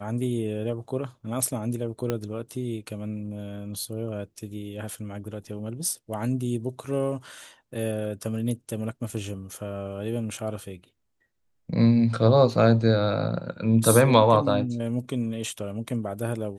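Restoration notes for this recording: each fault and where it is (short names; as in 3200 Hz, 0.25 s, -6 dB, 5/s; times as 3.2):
2.1 pop -13 dBFS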